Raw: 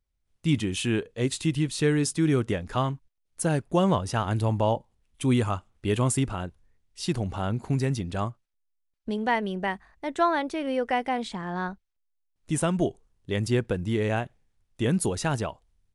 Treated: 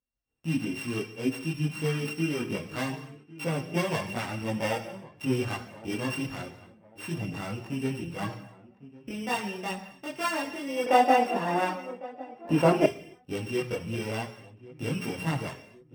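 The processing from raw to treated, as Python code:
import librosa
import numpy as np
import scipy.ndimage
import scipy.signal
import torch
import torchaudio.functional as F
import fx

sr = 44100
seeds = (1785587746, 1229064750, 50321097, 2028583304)

y = np.r_[np.sort(x[:len(x) // 16 * 16].reshape(-1, 16), axis=1).ravel(), x[len(x) // 16 * 16:]]
y = fx.recorder_agc(y, sr, target_db=-21.5, rise_db_per_s=11.0, max_gain_db=30)
y = scipy.signal.sosfilt(scipy.signal.butter(2, 96.0, 'highpass', fs=sr, output='sos'), y)
y = fx.high_shelf(y, sr, hz=6100.0, db=-8.0)
y = fx.hum_notches(y, sr, base_hz=60, count=3)
y = fx.echo_filtered(y, sr, ms=1103, feedback_pct=35, hz=1300.0, wet_db=-18.0)
y = fx.rev_gated(y, sr, seeds[0], gate_ms=310, shape='falling', drr_db=7.5)
y = fx.chorus_voices(y, sr, voices=6, hz=0.25, base_ms=22, depth_ms=4.5, mix_pct=60)
y = fx.peak_eq(y, sr, hz=610.0, db=14.0, octaves=2.8, at=(10.86, 12.86))
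y = y * librosa.db_to_amplitude(-2.0)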